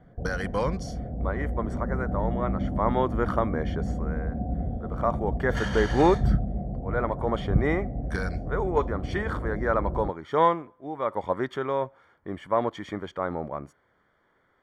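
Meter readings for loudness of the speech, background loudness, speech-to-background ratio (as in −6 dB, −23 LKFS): −29.0 LKFS, −31.5 LKFS, 2.5 dB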